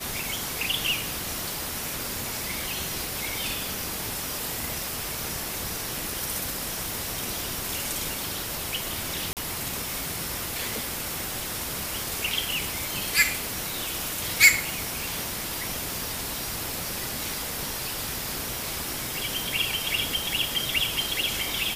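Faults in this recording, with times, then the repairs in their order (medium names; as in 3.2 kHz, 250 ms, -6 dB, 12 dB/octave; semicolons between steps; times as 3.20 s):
9.33–9.37 s: dropout 38 ms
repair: interpolate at 9.33 s, 38 ms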